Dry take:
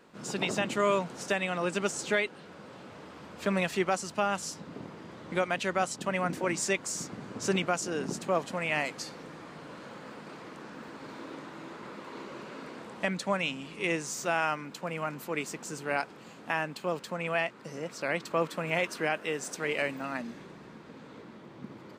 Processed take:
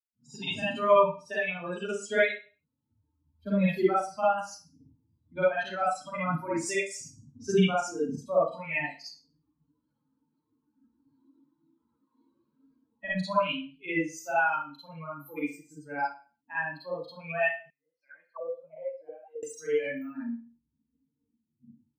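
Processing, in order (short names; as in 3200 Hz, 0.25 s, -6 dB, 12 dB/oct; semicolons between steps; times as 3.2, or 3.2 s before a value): per-bin expansion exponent 3; Schroeder reverb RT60 0.35 s, DRR -10 dB; 17.7–19.43 auto-wah 530–2400 Hz, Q 15, down, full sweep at -27 dBFS; high shelf 3800 Hz -10 dB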